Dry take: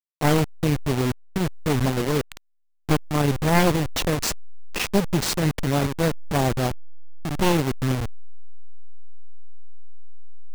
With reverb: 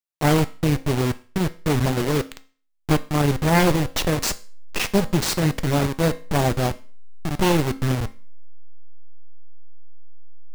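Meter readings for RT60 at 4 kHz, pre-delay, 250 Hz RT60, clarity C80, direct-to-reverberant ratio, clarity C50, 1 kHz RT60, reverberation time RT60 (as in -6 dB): 0.40 s, 4 ms, 0.40 s, 23.0 dB, 11.0 dB, 18.5 dB, 0.40 s, 0.40 s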